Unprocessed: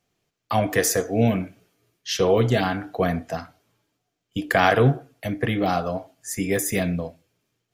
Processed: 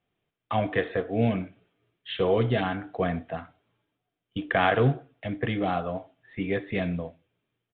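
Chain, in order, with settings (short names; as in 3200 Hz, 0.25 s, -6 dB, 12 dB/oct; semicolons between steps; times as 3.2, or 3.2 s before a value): modulation noise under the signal 26 dB; downsampling 8000 Hz; gain -4.5 dB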